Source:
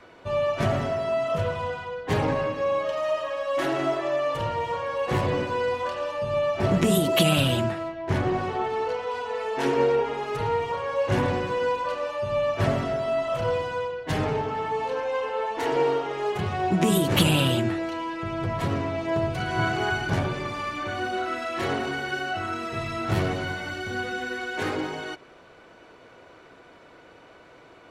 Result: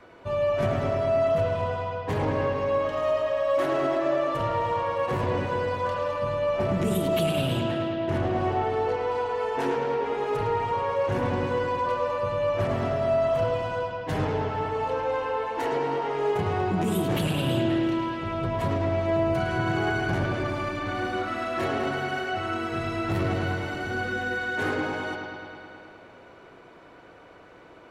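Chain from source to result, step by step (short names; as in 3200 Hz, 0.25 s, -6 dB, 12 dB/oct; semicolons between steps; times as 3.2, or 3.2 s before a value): bell 4800 Hz -5 dB 2.6 oct; limiter -19 dBFS, peak gain reduction 11 dB; on a send: analogue delay 0.106 s, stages 4096, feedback 77%, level -6.5 dB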